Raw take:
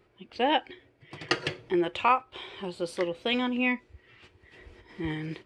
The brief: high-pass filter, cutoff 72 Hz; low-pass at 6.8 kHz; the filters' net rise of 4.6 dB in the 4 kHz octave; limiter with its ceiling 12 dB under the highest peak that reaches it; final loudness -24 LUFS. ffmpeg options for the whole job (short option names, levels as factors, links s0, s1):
-af "highpass=72,lowpass=6800,equalizer=f=4000:t=o:g=7,volume=2.66,alimiter=limit=0.251:level=0:latency=1"